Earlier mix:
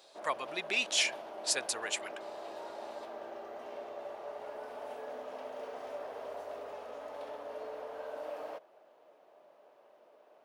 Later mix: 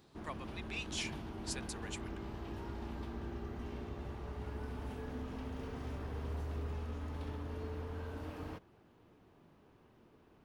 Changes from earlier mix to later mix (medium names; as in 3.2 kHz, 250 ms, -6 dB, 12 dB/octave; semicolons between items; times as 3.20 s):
speech -11.5 dB; background: remove resonant high-pass 600 Hz, resonance Q 6.5